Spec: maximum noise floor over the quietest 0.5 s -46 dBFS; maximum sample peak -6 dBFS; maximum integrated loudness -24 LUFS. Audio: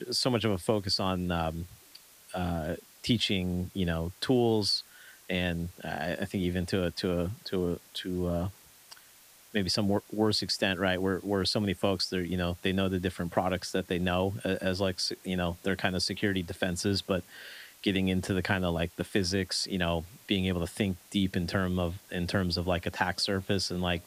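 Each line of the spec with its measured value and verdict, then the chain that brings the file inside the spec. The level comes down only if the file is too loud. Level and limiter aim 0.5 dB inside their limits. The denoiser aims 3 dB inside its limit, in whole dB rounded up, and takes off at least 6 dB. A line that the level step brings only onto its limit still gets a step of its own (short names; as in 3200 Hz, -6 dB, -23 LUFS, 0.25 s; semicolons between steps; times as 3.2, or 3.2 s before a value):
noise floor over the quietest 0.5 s -57 dBFS: OK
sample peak -11.5 dBFS: OK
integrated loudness -30.5 LUFS: OK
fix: none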